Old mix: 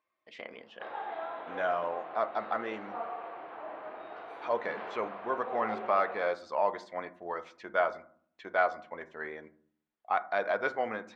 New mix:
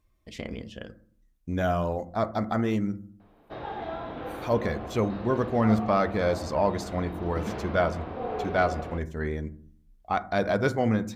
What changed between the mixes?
background: entry +2.70 s
master: remove band-pass filter 680–2,400 Hz

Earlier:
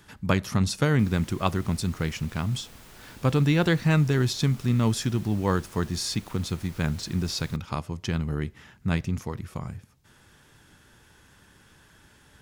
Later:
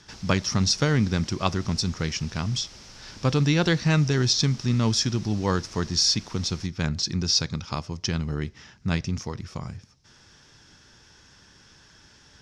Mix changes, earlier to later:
background: entry −0.90 s
master: add low-pass with resonance 5,500 Hz, resonance Q 4.8

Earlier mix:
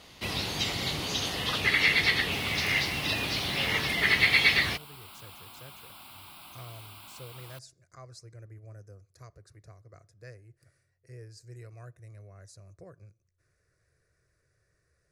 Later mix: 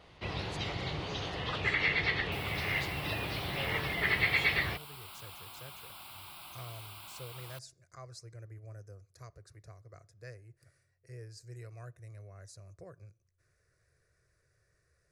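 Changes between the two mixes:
first sound: add head-to-tape spacing loss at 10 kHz 28 dB
master: add parametric band 240 Hz −9 dB 0.53 octaves

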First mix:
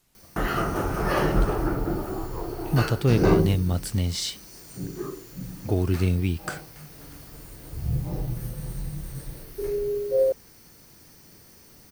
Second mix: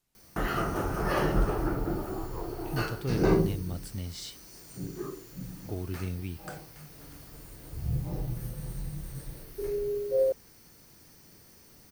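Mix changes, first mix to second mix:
speech −12.0 dB
background −4.0 dB

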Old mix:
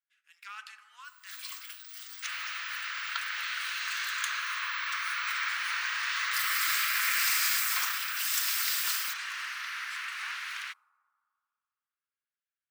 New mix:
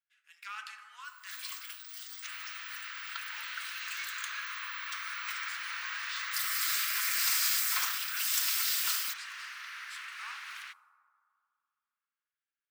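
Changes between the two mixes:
speech: send +6.0 dB
second sound −6.5 dB

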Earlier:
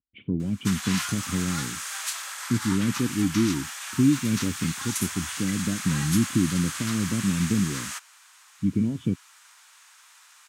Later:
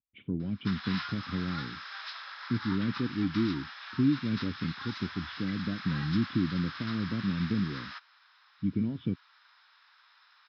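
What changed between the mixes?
background −3.5 dB
master: add Chebyshev low-pass with heavy ripple 5,300 Hz, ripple 6 dB

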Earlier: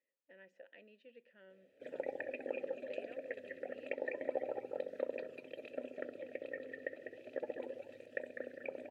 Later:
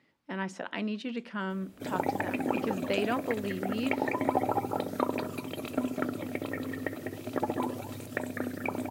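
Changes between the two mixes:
speech +11.5 dB
master: remove formant filter e

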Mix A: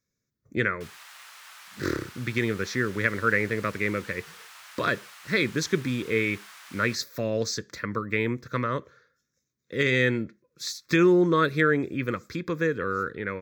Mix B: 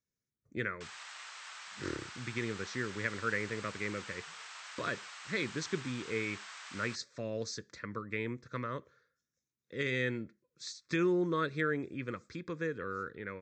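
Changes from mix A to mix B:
speech −10.5 dB
master: add linear-phase brick-wall low-pass 8,500 Hz

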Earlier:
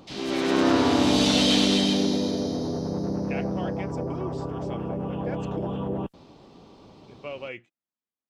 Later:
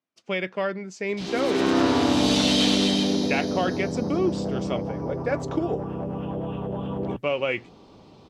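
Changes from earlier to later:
speech +11.0 dB
background: entry +1.10 s

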